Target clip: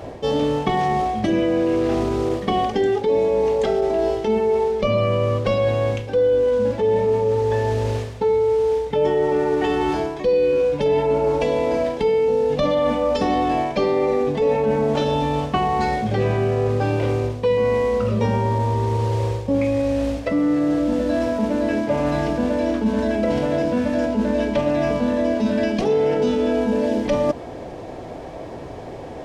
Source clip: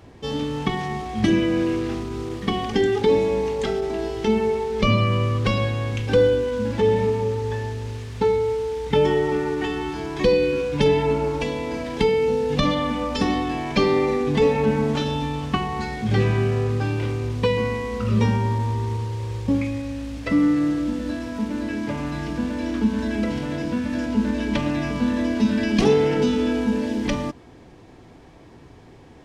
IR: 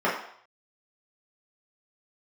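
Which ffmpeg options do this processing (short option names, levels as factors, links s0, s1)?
-af "equalizer=f=600:w=1.6:g=14,areverse,acompressor=threshold=0.0501:ratio=6,areverse,volume=2.66"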